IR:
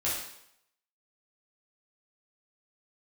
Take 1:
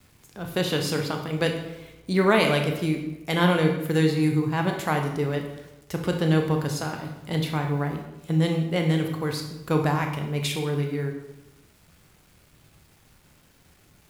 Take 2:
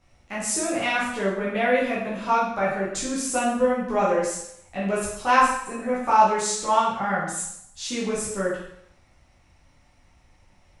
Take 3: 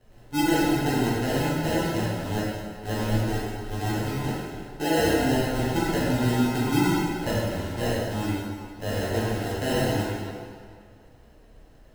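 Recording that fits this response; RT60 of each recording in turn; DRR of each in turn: 2; 0.95 s, 0.75 s, 2.0 s; 3.0 dB, -8.5 dB, -9.0 dB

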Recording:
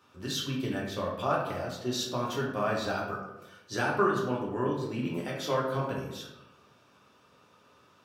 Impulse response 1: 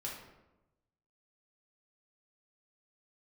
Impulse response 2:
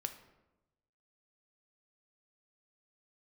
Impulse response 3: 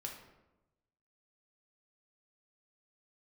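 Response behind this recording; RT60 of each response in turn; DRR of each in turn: 1; 1.0 s, 1.0 s, 1.0 s; -4.0 dB, 7.0 dB, 0.0 dB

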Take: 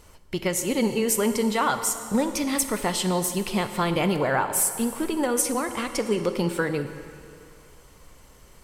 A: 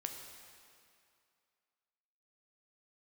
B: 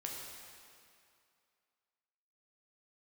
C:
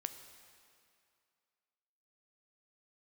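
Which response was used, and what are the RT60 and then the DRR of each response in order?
C; 2.4 s, 2.4 s, 2.4 s; 3.0 dB, -2.0 dB, 8.0 dB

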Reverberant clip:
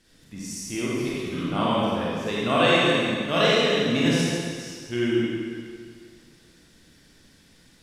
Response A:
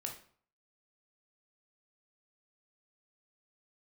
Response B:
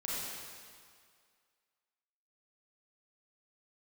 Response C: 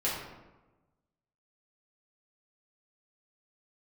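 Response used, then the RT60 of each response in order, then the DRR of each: B; 0.50 s, 2.0 s, 1.1 s; 1.5 dB, -7.5 dB, -8.5 dB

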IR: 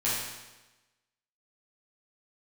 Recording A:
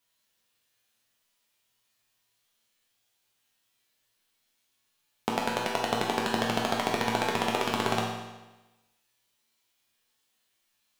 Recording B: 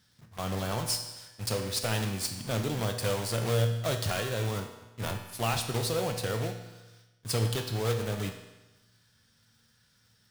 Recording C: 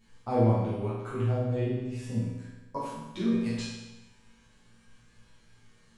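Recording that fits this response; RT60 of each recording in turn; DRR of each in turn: C; 1.1 s, 1.1 s, 1.1 s; -3.0 dB, 4.5 dB, -10.5 dB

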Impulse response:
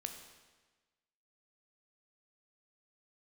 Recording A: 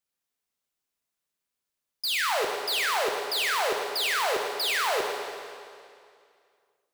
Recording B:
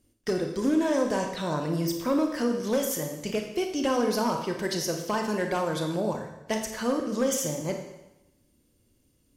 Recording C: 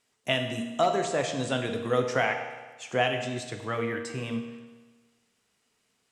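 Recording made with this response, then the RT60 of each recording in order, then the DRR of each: C; 2.3 s, 0.95 s, 1.3 s; 1.0 dB, 3.5 dB, 5.0 dB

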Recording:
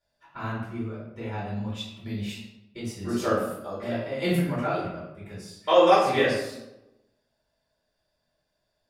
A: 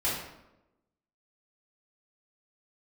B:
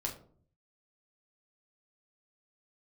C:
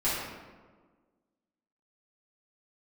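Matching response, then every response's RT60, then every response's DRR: A; 0.95 s, 0.55 s, 1.5 s; -8.5 dB, -1.0 dB, -11.5 dB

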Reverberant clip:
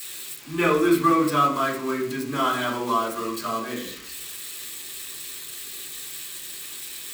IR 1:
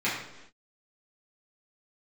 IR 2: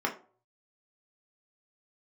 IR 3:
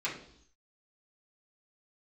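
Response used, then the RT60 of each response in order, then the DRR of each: 3; no single decay rate, 0.45 s, 0.65 s; -10.0 dB, -0.5 dB, -7.5 dB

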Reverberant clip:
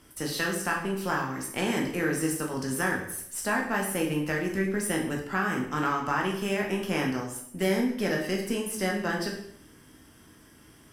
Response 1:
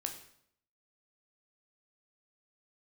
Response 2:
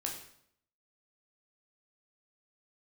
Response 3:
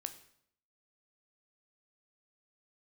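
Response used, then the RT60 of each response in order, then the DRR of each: 2; 0.70 s, 0.70 s, 0.70 s; 3.5 dB, -0.5 dB, 8.0 dB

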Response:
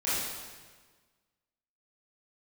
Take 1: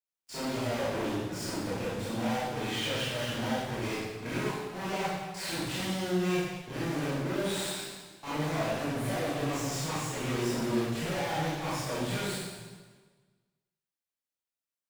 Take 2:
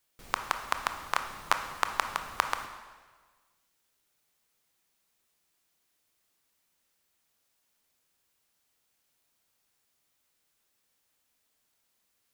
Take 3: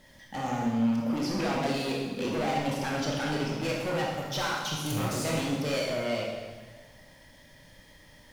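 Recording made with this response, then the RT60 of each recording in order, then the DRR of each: 1; 1.5 s, 1.5 s, 1.5 s; -12.0 dB, 6.5 dB, -2.5 dB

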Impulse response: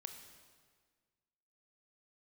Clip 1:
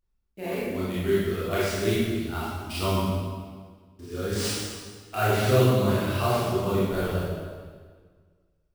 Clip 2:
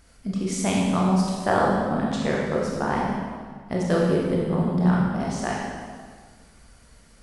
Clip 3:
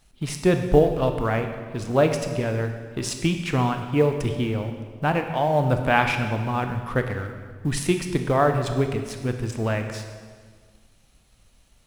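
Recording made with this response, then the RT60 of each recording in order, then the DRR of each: 3; 1.7 s, 1.7 s, 1.6 s; -9.5 dB, -4.0 dB, 5.5 dB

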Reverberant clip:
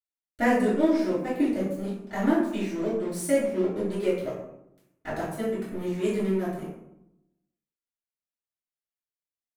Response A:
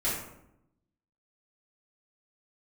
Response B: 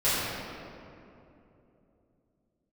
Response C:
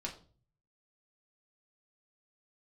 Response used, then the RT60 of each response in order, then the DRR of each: A; 0.80 s, 2.9 s, 0.40 s; -11.0 dB, -13.5 dB, -2.0 dB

